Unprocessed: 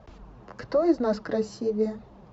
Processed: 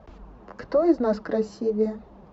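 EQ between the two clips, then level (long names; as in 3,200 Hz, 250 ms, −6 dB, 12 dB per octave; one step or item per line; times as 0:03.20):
parametric band 120 Hz −14 dB 0.29 octaves
high-shelf EQ 2,700 Hz −7.5 dB
+2.5 dB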